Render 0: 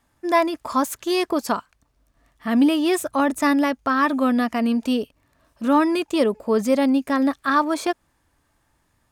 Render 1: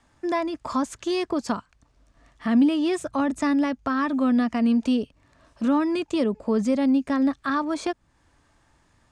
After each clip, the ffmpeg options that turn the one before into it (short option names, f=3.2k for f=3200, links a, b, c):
-filter_complex "[0:a]lowpass=f=8.3k:w=0.5412,lowpass=f=8.3k:w=1.3066,acrossover=split=220[a][b];[b]acompressor=threshold=-38dB:ratio=2[c];[a][c]amix=inputs=2:normalize=0,volume=4.5dB"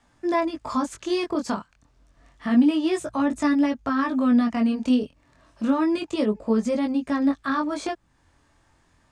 -af "flanger=delay=17:depth=7.1:speed=0.29,volume=3dB"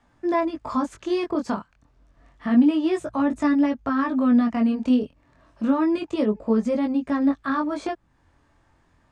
-af "highshelf=f=3.5k:g=-10.5,volume=1dB"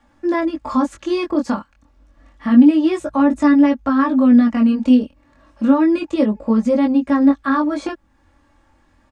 -af "aecho=1:1:3.6:0.64,volume=3.5dB"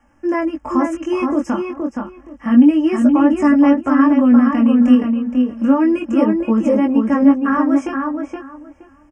-filter_complex "[0:a]asuperstop=centerf=4000:order=20:qfactor=2.2,asplit=2[a][b];[b]adelay=471,lowpass=f=2.9k:p=1,volume=-4dB,asplit=2[c][d];[d]adelay=471,lowpass=f=2.9k:p=1,volume=0.19,asplit=2[e][f];[f]adelay=471,lowpass=f=2.9k:p=1,volume=0.19[g];[c][e][g]amix=inputs=3:normalize=0[h];[a][h]amix=inputs=2:normalize=0"